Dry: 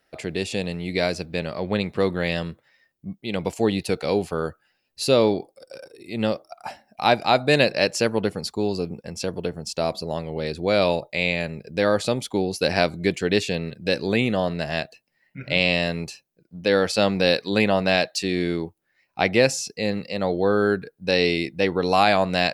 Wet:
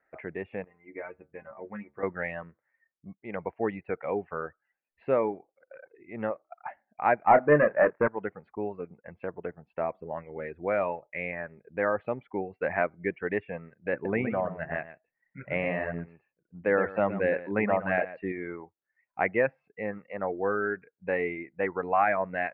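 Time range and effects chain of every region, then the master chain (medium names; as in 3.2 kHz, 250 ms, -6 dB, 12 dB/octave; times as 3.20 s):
0.64–2.03 s: low-pass 2.3 kHz + inharmonic resonator 67 Hz, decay 0.27 s, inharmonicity 0.008
7.27–8.08 s: low-pass 1.8 kHz 24 dB/octave + waveshaping leveller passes 2 + doubling 27 ms -6.5 dB
13.93–18.32 s: bass shelf 430 Hz +4.5 dB + delay 118 ms -6 dB
whole clip: reverb removal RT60 1 s; steep low-pass 2.1 kHz 48 dB/octave; bass shelf 440 Hz -11.5 dB; trim -1.5 dB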